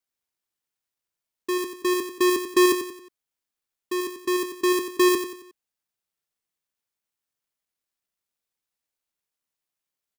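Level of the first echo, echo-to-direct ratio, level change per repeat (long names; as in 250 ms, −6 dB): −8.5 dB, −7.5 dB, −8.0 dB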